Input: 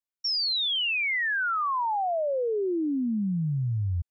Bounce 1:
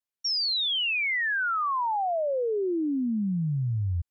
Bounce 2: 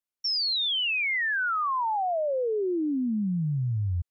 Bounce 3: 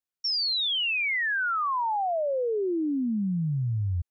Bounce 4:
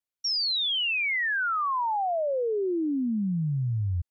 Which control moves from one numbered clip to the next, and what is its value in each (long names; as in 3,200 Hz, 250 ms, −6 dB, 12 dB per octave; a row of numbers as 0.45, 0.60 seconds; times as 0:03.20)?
pitch vibrato, speed: 0.66, 6.3, 2.1, 1.1 Hertz